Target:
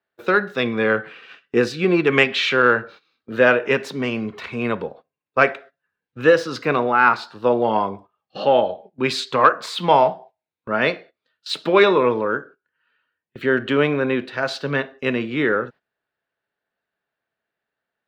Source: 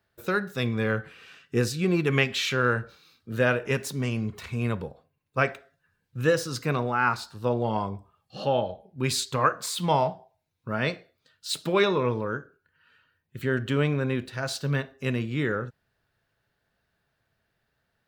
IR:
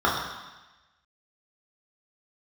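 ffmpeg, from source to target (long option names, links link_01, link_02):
-filter_complex "[0:a]acrossover=split=220 4200:gain=0.112 1 0.0891[link_01][link_02][link_03];[link_01][link_02][link_03]amix=inputs=3:normalize=0,acontrast=52,agate=range=-15dB:threshold=-44dB:ratio=16:detection=peak,volume=3.5dB"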